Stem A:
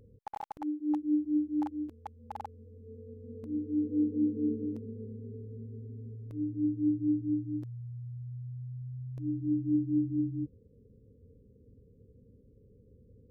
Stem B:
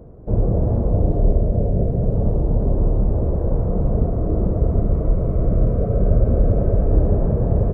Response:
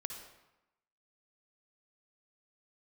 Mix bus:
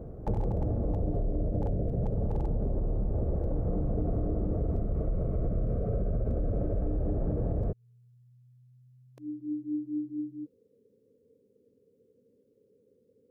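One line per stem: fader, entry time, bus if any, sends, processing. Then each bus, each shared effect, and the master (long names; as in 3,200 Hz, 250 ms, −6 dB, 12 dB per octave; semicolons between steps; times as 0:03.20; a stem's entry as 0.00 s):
+2.5 dB, 0.00 s, no send, high-pass filter 400 Hz
−0.5 dB, 0.00 s, no send, brickwall limiter −13.5 dBFS, peak gain reduction 9.5 dB; notch filter 990 Hz, Q 7.6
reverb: not used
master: downward compressor 4 to 1, threshold −27 dBFS, peak gain reduction 9 dB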